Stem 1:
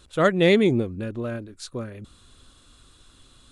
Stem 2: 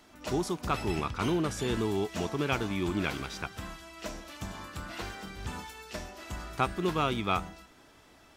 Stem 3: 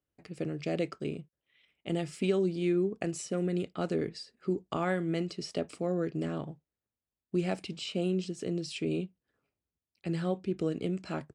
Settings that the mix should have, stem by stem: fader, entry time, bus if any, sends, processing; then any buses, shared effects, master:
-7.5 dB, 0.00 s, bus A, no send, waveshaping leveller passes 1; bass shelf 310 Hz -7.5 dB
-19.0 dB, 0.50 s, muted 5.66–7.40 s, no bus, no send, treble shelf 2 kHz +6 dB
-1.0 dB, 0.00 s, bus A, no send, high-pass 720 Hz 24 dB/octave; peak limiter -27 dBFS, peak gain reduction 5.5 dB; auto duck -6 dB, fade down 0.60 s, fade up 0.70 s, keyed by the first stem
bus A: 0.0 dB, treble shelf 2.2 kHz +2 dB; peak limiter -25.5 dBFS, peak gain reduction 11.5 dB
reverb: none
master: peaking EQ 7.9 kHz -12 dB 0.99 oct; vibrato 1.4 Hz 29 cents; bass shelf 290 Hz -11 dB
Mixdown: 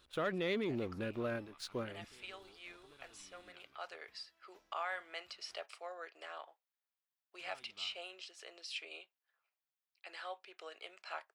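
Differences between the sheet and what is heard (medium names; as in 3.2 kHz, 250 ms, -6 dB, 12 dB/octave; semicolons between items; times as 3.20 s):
stem 1: missing bass shelf 310 Hz -7.5 dB; stem 2 -19.0 dB -> -30.0 dB; master: missing vibrato 1.4 Hz 29 cents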